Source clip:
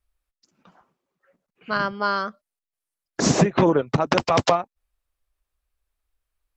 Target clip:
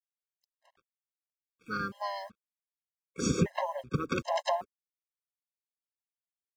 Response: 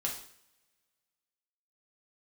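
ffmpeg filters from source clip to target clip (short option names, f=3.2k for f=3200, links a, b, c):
-filter_complex "[0:a]acrusher=bits=7:mix=0:aa=0.5,asplit=3[a][b][c];[b]asetrate=22050,aresample=44100,atempo=2,volume=-11dB[d];[c]asetrate=58866,aresample=44100,atempo=0.749154,volume=-16dB[e];[a][d][e]amix=inputs=3:normalize=0,afftfilt=real='re*gt(sin(2*PI*1.3*pts/sr)*(1-2*mod(floor(b*sr/1024/540),2)),0)':imag='im*gt(sin(2*PI*1.3*pts/sr)*(1-2*mod(floor(b*sr/1024/540),2)),0)':win_size=1024:overlap=0.75,volume=-8.5dB"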